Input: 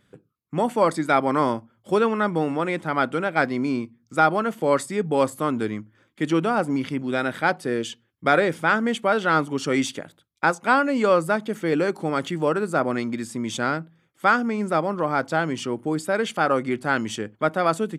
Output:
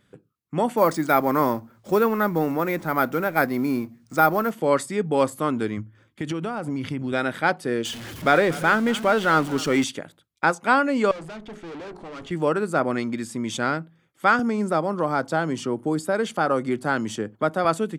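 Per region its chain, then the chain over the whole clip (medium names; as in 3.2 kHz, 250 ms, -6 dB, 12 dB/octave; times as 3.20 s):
0.77–4.51 s: companding laws mixed up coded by mu + peaking EQ 3.1 kHz -9 dB 0.4 oct + careless resampling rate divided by 3×, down none, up hold
5.77–7.13 s: compression, threshold -25 dBFS + peaking EQ 92 Hz +11.5 dB 1 oct
7.85–9.84 s: jump at every zero crossing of -30.5 dBFS + treble shelf 9.2 kHz -4 dB + delay 237 ms -18.5 dB
11.11–12.31 s: hum notches 60/120/180/240/300/360/420 Hz + valve stage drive 35 dB, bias 0.7 + distance through air 78 m
14.39–17.65 s: peaking EQ 2.4 kHz -6 dB 1.1 oct + three bands compressed up and down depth 40%
whole clip: none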